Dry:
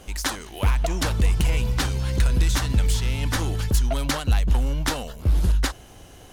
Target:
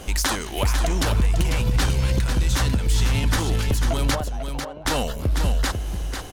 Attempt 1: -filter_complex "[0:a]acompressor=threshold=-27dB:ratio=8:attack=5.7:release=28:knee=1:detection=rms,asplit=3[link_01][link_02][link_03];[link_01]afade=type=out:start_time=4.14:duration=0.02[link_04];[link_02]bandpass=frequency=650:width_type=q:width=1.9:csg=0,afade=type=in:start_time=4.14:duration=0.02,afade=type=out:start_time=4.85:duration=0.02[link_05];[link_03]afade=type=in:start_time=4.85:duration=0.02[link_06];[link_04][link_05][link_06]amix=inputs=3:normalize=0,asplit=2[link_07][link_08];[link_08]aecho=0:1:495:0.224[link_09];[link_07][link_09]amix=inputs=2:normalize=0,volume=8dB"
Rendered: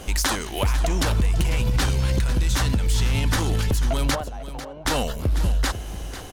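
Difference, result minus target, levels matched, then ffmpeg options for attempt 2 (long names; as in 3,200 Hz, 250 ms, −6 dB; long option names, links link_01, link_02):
echo-to-direct −6 dB
-filter_complex "[0:a]acompressor=threshold=-27dB:ratio=8:attack=5.7:release=28:knee=1:detection=rms,asplit=3[link_01][link_02][link_03];[link_01]afade=type=out:start_time=4.14:duration=0.02[link_04];[link_02]bandpass=frequency=650:width_type=q:width=1.9:csg=0,afade=type=in:start_time=4.14:duration=0.02,afade=type=out:start_time=4.85:duration=0.02[link_05];[link_03]afade=type=in:start_time=4.85:duration=0.02[link_06];[link_04][link_05][link_06]amix=inputs=3:normalize=0,asplit=2[link_07][link_08];[link_08]aecho=0:1:495:0.447[link_09];[link_07][link_09]amix=inputs=2:normalize=0,volume=8dB"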